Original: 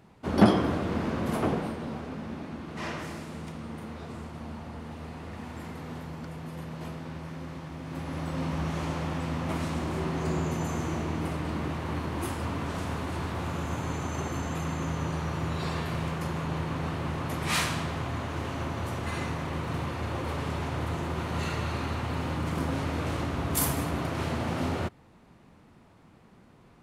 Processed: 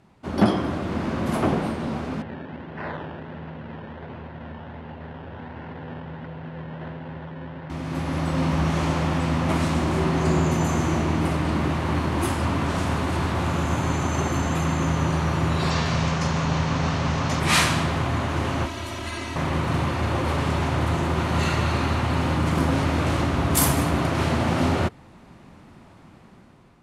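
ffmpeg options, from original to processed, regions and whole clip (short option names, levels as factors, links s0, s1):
-filter_complex "[0:a]asettb=1/sr,asplit=3[s0][s1][s2];[s0]atrim=end=2.224[s3];[s1]atrim=start=2.22:end=7.7,asetpts=PTS-STARTPTS,afade=t=in:d=0.004:c=qsin,afade=t=out:st=5.476:d=0.004:c=qsin,acrusher=samples=17:mix=1:aa=0.000001:lfo=1:lforange=10.2:lforate=1.4,highpass=110,equalizer=f=140:t=q:w=4:g=-4,equalizer=f=210:t=q:w=4:g=-10,equalizer=f=320:t=q:w=4:g=-9,equalizer=f=690:t=q:w=4:g=-4,equalizer=f=1200:t=q:w=4:g=-9,equalizer=f=2300:t=q:w=4:g=-9,lowpass=f=2500:w=0.5412,lowpass=f=2500:w=1.3066[s4];[s2]atrim=start=7.696[s5];[s3][s4]acrossfade=d=0.004:c1=hsin:c2=qsin[s6];[s6][s5]acrossfade=d=0.004:c1=qsin:c2=hsin,asettb=1/sr,asplit=3[s7][s8][s9];[s7]atrim=end=15.704[s10];[s8]atrim=start=15.7:end=17.4,asetpts=PTS-STARTPTS,afade=t=in:d=0.004:c=qsin,afade=t=out:st=1.696:d=0.004:c=qsin,lowpass=f=6000:t=q:w=2.5,bandreject=f=340:w=5.9[s11];[s9]atrim=start=17.396[s12];[s10][s11]acrossfade=d=0.004:c1=hsin:c2=qsin[s13];[s13][s12]acrossfade=d=0.004:c1=qsin:c2=hsin,asettb=1/sr,asplit=3[s14][s15][s16];[s14]atrim=end=18.654[s17];[s15]atrim=start=18.65:end=19.36,asetpts=PTS-STARTPTS,afade=t=in:d=0.004:c=qsin,afade=t=out:st=0.706:d=0.004:c=qsin,aecho=1:1:3.1:0.82,atrim=end_sample=31311,acrossover=split=2200|5500[s18][s19][s20];[s18]acompressor=threshold=0.01:ratio=4[s21];[s19]acompressor=threshold=0.00562:ratio=4[s22];[s20]acompressor=threshold=0.00178:ratio=4[s23];[s21][s22][s23]amix=inputs=3:normalize=0[s24];[s16]atrim=start=19.356[s25];[s17][s24]acrossfade=d=0.004:c1=hsin:c2=qsin[s26];[s26][s25]acrossfade=d=0.004:c1=qsin:c2=hsin,bandreject=f=460:w=12,dynaudnorm=f=370:g=5:m=2.66,lowpass=12000"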